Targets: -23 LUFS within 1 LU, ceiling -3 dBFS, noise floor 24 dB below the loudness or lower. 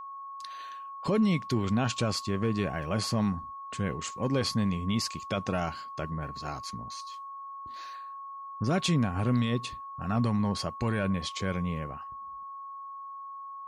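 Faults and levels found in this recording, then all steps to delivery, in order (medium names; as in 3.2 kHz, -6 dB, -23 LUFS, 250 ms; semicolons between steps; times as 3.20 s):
steady tone 1.1 kHz; tone level -39 dBFS; loudness -31.0 LUFS; peak level -17.5 dBFS; loudness target -23.0 LUFS
-> band-stop 1.1 kHz, Q 30; trim +8 dB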